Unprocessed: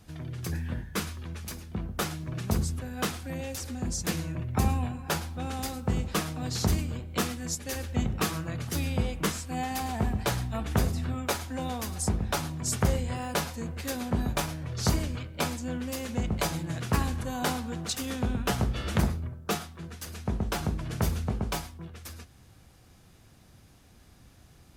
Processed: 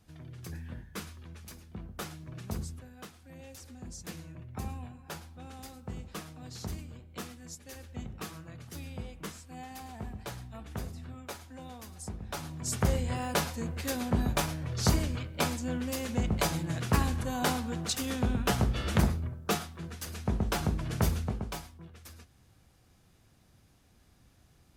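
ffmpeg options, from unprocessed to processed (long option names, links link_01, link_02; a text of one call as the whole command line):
ffmpeg -i in.wav -af "volume=11dB,afade=type=out:start_time=2.64:duration=0.47:silence=0.281838,afade=type=in:start_time=3.11:duration=0.35:silence=0.421697,afade=type=in:start_time=12.19:duration=0.94:silence=0.237137,afade=type=out:start_time=21.07:duration=0.42:silence=0.446684" out.wav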